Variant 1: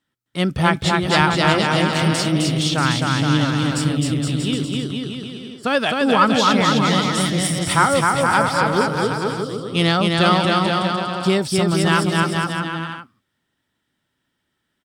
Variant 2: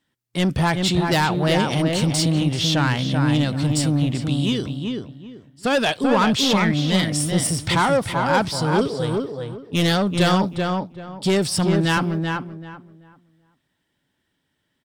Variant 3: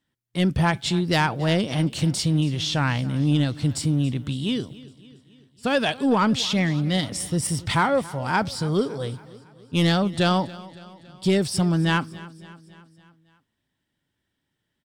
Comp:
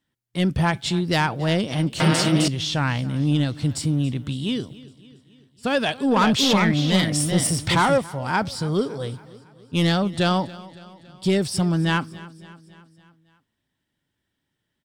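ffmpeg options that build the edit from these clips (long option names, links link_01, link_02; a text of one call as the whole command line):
ffmpeg -i take0.wav -i take1.wav -i take2.wav -filter_complex "[2:a]asplit=3[link_01][link_02][link_03];[link_01]atrim=end=2.002[link_04];[0:a]atrim=start=1.998:end=2.482[link_05];[link_02]atrim=start=2.478:end=6.162[link_06];[1:a]atrim=start=6.158:end=7.982[link_07];[link_03]atrim=start=7.978[link_08];[link_04][link_05]acrossfade=duration=0.004:curve1=hsin:curve2=hsin[link_09];[link_09][link_06]acrossfade=duration=0.004:curve1=hsin:curve2=hsin[link_10];[link_10][link_07]acrossfade=duration=0.004:curve1=hsin:curve2=hsin[link_11];[link_11][link_08]acrossfade=duration=0.004:curve1=hsin:curve2=hsin" out.wav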